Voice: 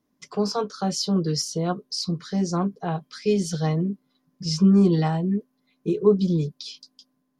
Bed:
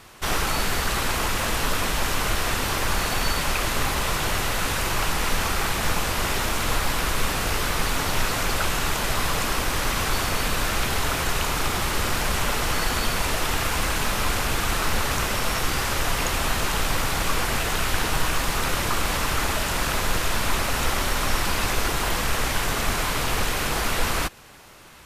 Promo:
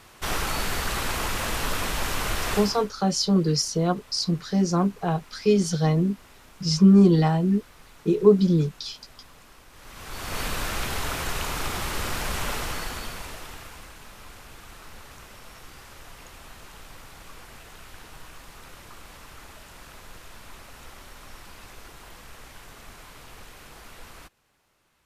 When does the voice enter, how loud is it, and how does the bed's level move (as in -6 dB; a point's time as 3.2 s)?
2.20 s, +2.0 dB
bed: 2.57 s -3.5 dB
2.94 s -27 dB
9.7 s -27 dB
10.39 s -5 dB
12.54 s -5 dB
13.95 s -21.5 dB